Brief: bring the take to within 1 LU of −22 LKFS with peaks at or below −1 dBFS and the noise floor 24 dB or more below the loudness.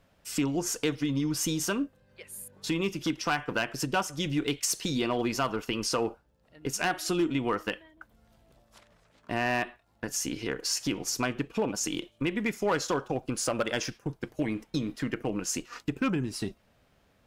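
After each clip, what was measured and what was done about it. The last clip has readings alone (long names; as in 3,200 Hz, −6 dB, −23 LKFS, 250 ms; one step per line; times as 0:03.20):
share of clipped samples 0.4%; peaks flattened at −20.0 dBFS; integrated loudness −30.5 LKFS; sample peak −20.0 dBFS; target loudness −22.0 LKFS
→ clipped peaks rebuilt −20 dBFS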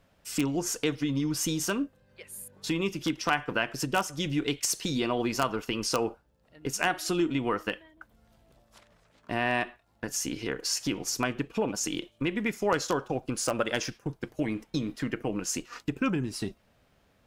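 share of clipped samples 0.0%; integrated loudness −30.5 LKFS; sample peak −11.0 dBFS; target loudness −22.0 LKFS
→ level +8.5 dB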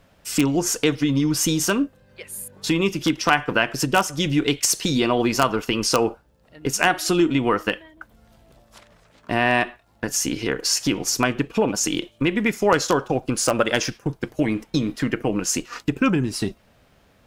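integrated loudness −22.0 LKFS; sample peak −2.5 dBFS; background noise floor −58 dBFS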